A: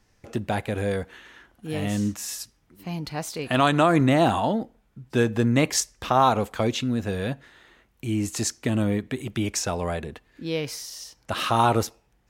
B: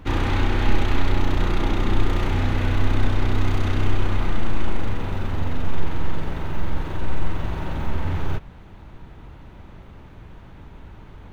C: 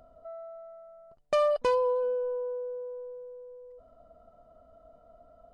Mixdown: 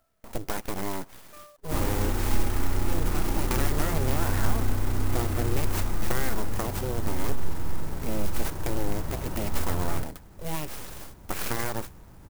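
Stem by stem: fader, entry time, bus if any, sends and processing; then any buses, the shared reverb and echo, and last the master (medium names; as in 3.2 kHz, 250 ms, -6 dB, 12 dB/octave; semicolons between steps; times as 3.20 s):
+1.0 dB, 0.00 s, no send, gate -51 dBFS, range -10 dB; compression 6:1, threshold -25 dBFS, peak gain reduction 11 dB; full-wave rectifier
-6.0 dB, 1.65 s, no send, none
-17.5 dB, 0.00 s, no send, high-order bell 1.7 kHz +11.5 dB; auto duck -12 dB, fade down 0.25 s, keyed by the first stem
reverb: none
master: sampling jitter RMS 0.076 ms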